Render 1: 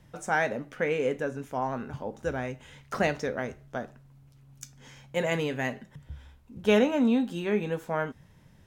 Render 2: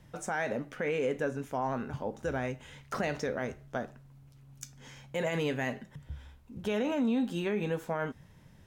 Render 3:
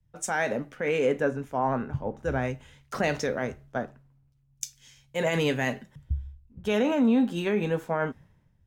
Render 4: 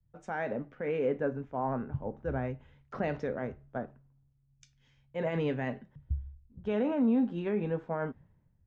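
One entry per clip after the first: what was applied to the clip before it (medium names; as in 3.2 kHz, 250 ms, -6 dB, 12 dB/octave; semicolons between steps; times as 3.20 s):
peak limiter -22.5 dBFS, peak gain reduction 12 dB
three bands expanded up and down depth 100%; trim +5.5 dB
tape spacing loss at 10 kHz 38 dB; trim -3.5 dB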